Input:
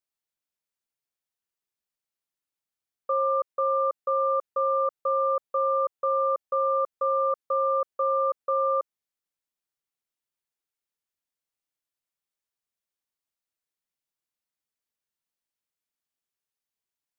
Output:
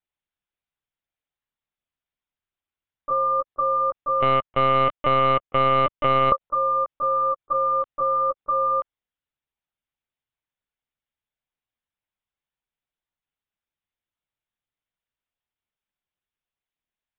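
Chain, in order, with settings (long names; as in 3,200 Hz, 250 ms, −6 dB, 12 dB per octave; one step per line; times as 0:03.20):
0:04.22–0:06.31: leveller curve on the samples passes 3
linear-prediction vocoder at 8 kHz pitch kept
level +2.5 dB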